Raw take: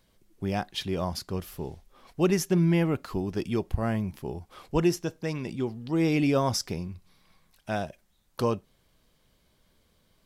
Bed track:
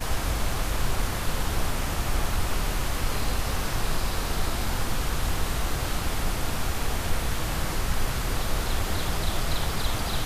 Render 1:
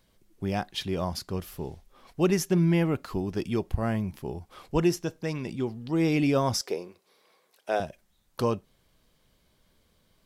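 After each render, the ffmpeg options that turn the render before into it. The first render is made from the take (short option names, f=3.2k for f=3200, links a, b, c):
-filter_complex "[0:a]asettb=1/sr,asplit=3[a][b][c];[a]atrim=end=6.614[d];[b]atrim=start=6.61:end=7.8,asetpts=PTS-STARTPTS,afade=t=in:d=0.004:c=qsin,afade=t=out:st=1.186:d=0.004:c=qsin,highpass=f=440:t=q:w=3[e];[c]atrim=start=7.796[f];[d][e]acrossfade=d=0.004:c1=hsin:c2=qsin[g];[g][f]acrossfade=d=0.004:c1=qsin:c2=hsin"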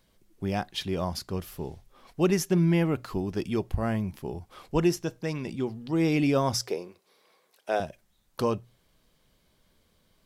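-af "bandreject=f=60:t=h:w=6,bandreject=f=120:t=h:w=6"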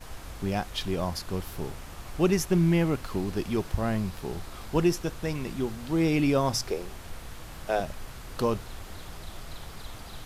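-filter_complex "[1:a]volume=-14.5dB[a];[0:a][a]amix=inputs=2:normalize=0"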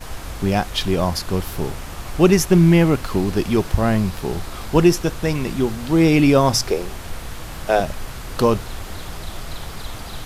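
-af "volume=10dB"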